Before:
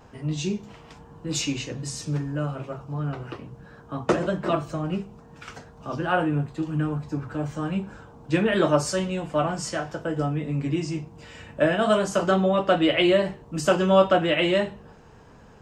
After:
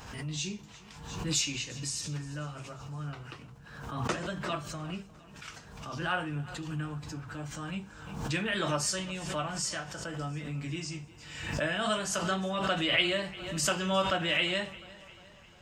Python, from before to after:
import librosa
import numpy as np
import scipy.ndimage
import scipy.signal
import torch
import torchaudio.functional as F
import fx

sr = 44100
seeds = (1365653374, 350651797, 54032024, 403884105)

y = fx.tone_stack(x, sr, knobs='5-5-5')
y = fx.echo_feedback(y, sr, ms=352, feedback_pct=54, wet_db=-20.0)
y = fx.pre_swell(y, sr, db_per_s=53.0)
y = F.gain(torch.from_numpy(y), 6.0).numpy()